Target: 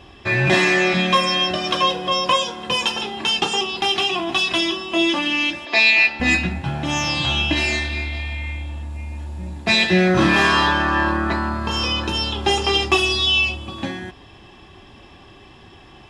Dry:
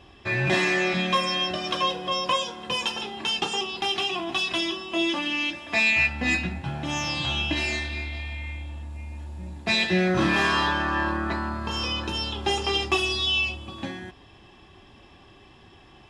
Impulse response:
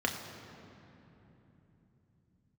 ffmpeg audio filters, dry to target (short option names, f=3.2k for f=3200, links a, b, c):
-filter_complex "[0:a]asettb=1/sr,asplit=3[a][b][c];[a]atrim=end=5.654[d];[b]atrim=start=5.65:end=6.2,asetpts=PTS-STARTPTS,afade=t=in:d=0.004:c=qsin,afade=t=out:st=0.546:d=0.004:c=qsin,highpass=350,equalizer=f=380:t=q:w=4:g=6,equalizer=f=1.4k:t=q:w=4:g=-5,equalizer=f=4.3k:t=q:w=4:g=8,lowpass=f=6.2k:w=0.5412,lowpass=f=6.2k:w=1.3066[e];[c]atrim=start=6.196[f];[d][e]acrossfade=d=0.004:c1=hsin:c2=qsin[g];[g][f]acrossfade=d=0.004:c1=qsin:c2=hsin,volume=6.5dB"